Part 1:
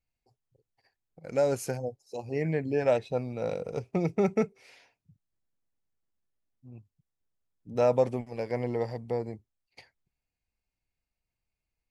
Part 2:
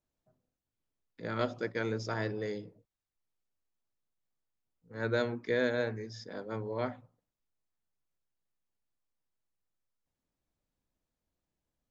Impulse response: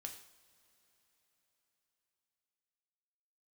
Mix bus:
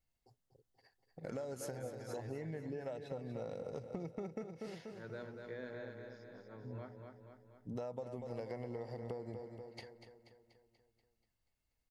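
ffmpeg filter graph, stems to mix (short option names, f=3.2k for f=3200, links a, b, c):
-filter_complex "[0:a]acompressor=threshold=-39dB:ratio=2,bandreject=f=2.4k:w=6,volume=0.5dB,asplit=2[a][b];[b]volume=-10.5dB[c];[1:a]lowpass=f=2.4k:p=1,volume=-16dB,asplit=2[d][e];[e]volume=-5dB[f];[c][f]amix=inputs=2:normalize=0,aecho=0:1:241|482|723|964|1205|1446|1687|1928:1|0.56|0.314|0.176|0.0983|0.0551|0.0308|0.0173[g];[a][d][g]amix=inputs=3:normalize=0,acompressor=threshold=-39dB:ratio=12"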